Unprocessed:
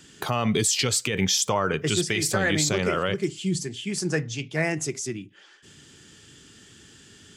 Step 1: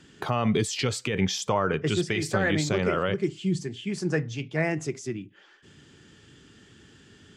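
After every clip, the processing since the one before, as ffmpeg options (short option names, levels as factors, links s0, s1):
-af "aemphasis=mode=reproduction:type=75kf"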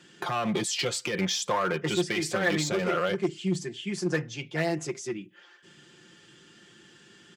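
-af "aeval=exprs='clip(val(0),-1,0.0668)':c=same,highpass=f=320:p=1,aecho=1:1:5.7:0.65"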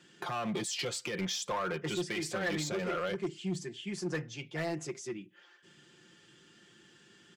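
-af "asoftclip=type=tanh:threshold=0.1,volume=0.531"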